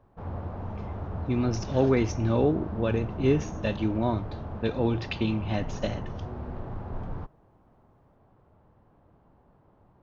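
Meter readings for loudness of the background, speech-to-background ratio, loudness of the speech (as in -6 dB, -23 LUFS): -37.0 LUFS, 9.0 dB, -28.0 LUFS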